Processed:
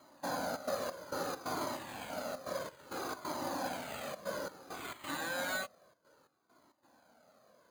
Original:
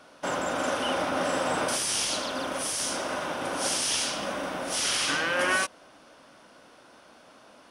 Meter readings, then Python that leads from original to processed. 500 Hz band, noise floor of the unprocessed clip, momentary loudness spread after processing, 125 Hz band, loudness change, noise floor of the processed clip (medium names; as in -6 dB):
-9.0 dB, -55 dBFS, 6 LU, -8.5 dB, -12.0 dB, -77 dBFS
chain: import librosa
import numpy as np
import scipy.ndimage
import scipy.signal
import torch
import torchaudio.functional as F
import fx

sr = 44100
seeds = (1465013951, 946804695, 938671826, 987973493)

y = scipy.signal.sosfilt(scipy.signal.butter(2, 86.0, 'highpass', fs=sr, output='sos'), x)
y = fx.high_shelf(y, sr, hz=2100.0, db=-9.5)
y = fx.rider(y, sr, range_db=10, speed_s=2.0)
y = fx.step_gate(y, sr, bpm=134, pattern='xxxxx.xx..xx.xxx', floor_db=-12.0, edge_ms=4.5)
y = np.repeat(scipy.signal.resample_poly(y, 1, 8), 8)[:len(y)]
y = fx.comb_cascade(y, sr, direction='falling', hz=0.6)
y = y * librosa.db_to_amplitude(-2.0)